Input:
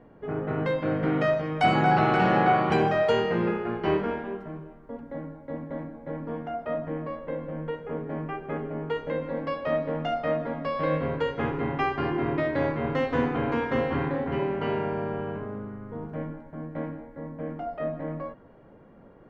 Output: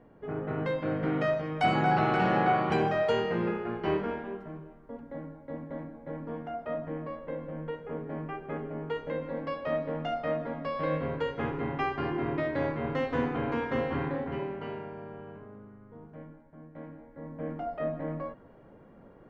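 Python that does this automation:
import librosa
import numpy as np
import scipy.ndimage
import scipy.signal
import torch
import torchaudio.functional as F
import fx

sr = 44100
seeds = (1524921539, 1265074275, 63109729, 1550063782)

y = fx.gain(x, sr, db=fx.line((14.16, -4.0), (14.91, -12.5), (16.74, -12.5), (17.46, -1.5)))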